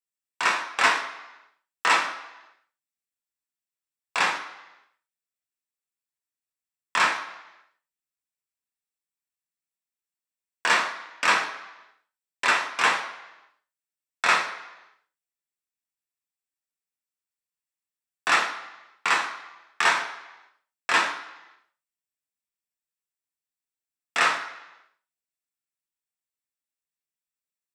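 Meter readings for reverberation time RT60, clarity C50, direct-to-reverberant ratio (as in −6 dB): 1.0 s, 9.0 dB, 0.0 dB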